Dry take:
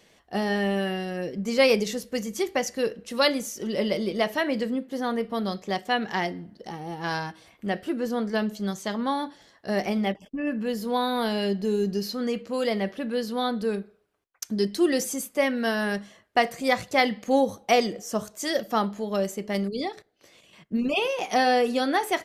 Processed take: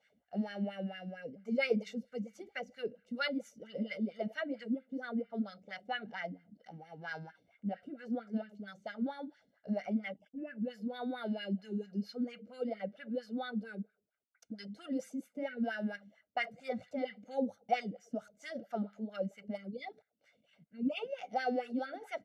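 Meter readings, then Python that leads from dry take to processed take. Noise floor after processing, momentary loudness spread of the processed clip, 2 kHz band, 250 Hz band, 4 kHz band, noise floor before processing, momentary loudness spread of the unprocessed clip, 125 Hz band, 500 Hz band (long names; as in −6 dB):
−79 dBFS, 11 LU, −12.5 dB, −10.0 dB, −16.5 dB, −62 dBFS, 9 LU, −10.5 dB, −14.0 dB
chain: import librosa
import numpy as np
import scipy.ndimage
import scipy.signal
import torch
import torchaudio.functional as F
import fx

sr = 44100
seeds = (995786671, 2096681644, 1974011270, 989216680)

y = fx.peak_eq(x, sr, hz=950.0, db=-15.0, octaves=1.3)
y = y + 0.87 * np.pad(y, (int(1.4 * sr / 1000.0), 0))[:len(y)]
y = fx.wah_lfo(y, sr, hz=4.4, low_hz=230.0, high_hz=1800.0, q=3.6)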